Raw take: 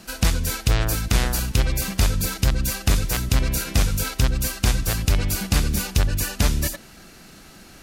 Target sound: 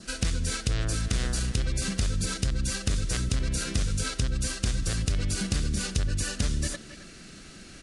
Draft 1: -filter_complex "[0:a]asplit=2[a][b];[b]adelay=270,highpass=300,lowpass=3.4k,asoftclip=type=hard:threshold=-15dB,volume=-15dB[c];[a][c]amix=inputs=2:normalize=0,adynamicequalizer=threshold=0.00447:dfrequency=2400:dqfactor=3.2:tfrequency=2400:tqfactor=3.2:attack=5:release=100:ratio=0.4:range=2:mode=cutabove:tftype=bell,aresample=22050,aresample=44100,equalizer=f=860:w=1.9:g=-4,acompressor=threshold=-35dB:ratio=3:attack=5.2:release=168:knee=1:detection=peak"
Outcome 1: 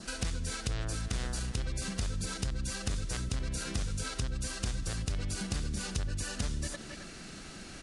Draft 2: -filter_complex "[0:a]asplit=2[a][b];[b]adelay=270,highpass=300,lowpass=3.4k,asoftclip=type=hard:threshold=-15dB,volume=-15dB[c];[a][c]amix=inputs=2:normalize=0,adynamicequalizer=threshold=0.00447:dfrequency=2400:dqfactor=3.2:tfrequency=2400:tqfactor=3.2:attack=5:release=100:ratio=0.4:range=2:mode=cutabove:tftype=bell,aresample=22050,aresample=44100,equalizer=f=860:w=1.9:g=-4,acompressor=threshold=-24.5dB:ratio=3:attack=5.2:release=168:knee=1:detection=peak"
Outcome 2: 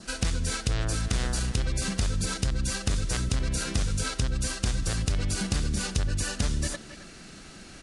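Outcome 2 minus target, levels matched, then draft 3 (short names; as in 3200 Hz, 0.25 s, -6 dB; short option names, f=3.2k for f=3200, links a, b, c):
1000 Hz band +3.0 dB
-filter_complex "[0:a]asplit=2[a][b];[b]adelay=270,highpass=300,lowpass=3.4k,asoftclip=type=hard:threshold=-15dB,volume=-15dB[c];[a][c]amix=inputs=2:normalize=0,adynamicequalizer=threshold=0.00447:dfrequency=2400:dqfactor=3.2:tfrequency=2400:tqfactor=3.2:attack=5:release=100:ratio=0.4:range=2:mode=cutabove:tftype=bell,aresample=22050,aresample=44100,equalizer=f=860:w=1.9:g=-11,acompressor=threshold=-24.5dB:ratio=3:attack=5.2:release=168:knee=1:detection=peak"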